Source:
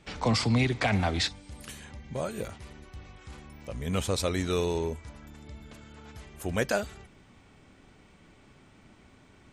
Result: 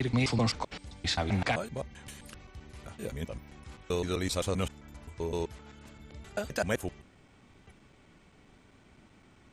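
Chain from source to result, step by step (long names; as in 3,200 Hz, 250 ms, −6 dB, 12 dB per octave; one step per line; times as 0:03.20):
slices reordered back to front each 130 ms, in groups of 6
pitch vibrato 0.82 Hz 20 cents
level −2.5 dB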